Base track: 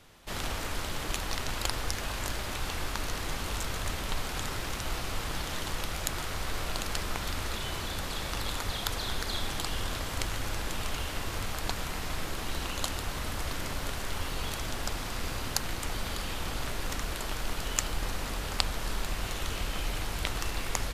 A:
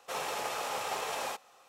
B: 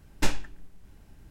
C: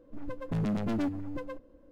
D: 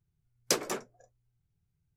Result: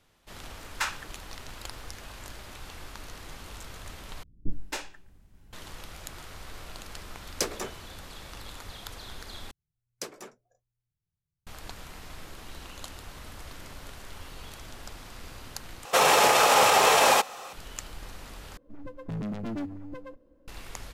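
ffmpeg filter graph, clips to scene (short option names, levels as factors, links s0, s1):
-filter_complex "[2:a]asplit=2[s0][s1];[4:a]asplit=2[s2][s3];[0:a]volume=0.335[s4];[s0]highpass=f=1200:t=q:w=3[s5];[s1]acrossover=split=330[s6][s7];[s7]adelay=270[s8];[s6][s8]amix=inputs=2:normalize=0[s9];[1:a]alimiter=level_in=23.7:limit=0.891:release=50:level=0:latency=1[s10];[s4]asplit=5[s11][s12][s13][s14][s15];[s11]atrim=end=4.234[s16];[s9]atrim=end=1.3,asetpts=PTS-STARTPTS,volume=0.631[s17];[s12]atrim=start=5.526:end=9.514[s18];[s3]atrim=end=1.96,asetpts=PTS-STARTPTS,volume=0.299[s19];[s13]atrim=start=11.466:end=15.854[s20];[s10]atrim=end=1.68,asetpts=PTS-STARTPTS,volume=0.355[s21];[s14]atrim=start=17.526:end=18.574[s22];[3:a]atrim=end=1.91,asetpts=PTS-STARTPTS,volume=0.668[s23];[s15]atrim=start=20.476[s24];[s5]atrim=end=1.3,asetpts=PTS-STARTPTS,volume=0.891,afade=t=in:d=0.004:c=hsin,afade=t=out:st=1.296:d=0.004:c=hsin,adelay=580[s25];[s2]atrim=end=1.96,asetpts=PTS-STARTPTS,volume=0.841,afade=t=in:d=0.004:c=hsin,afade=t=out:st=1.956:d=0.004:c=hsin,adelay=304290S[s26];[s16][s17]acrossfade=d=0.004:c1=hsin:c2=hsin[s27];[s27][s18]acrossfade=d=0.004:c1=hsin:c2=hsin[s28];[s28][s19]acrossfade=d=0.004:c1=hsin:c2=hsin[s29];[s29][s20]acrossfade=d=0.004:c1=hsin:c2=hsin[s30];[s30][s21]acrossfade=d=0.004:c1=hsin:c2=hsin[s31];[s31][s22]acrossfade=d=0.004:c1=hsin:c2=hsin[s32];[s32][s23]acrossfade=d=0.004:c1=hsin:c2=hsin[s33];[s33][s24]acrossfade=d=0.004:c1=hsin:c2=hsin[s34];[s34][s25][s26]amix=inputs=3:normalize=0"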